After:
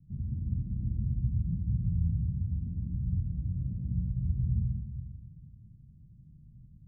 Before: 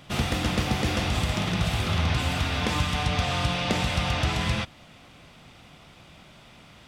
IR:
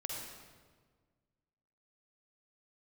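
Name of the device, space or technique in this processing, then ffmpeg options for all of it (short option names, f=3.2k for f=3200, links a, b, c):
club heard from the street: -filter_complex "[0:a]alimiter=limit=-18.5dB:level=0:latency=1:release=181,lowpass=f=170:w=0.5412,lowpass=f=170:w=1.3066[a];[1:a]atrim=start_sample=2205[b];[a][b]afir=irnorm=-1:irlink=0"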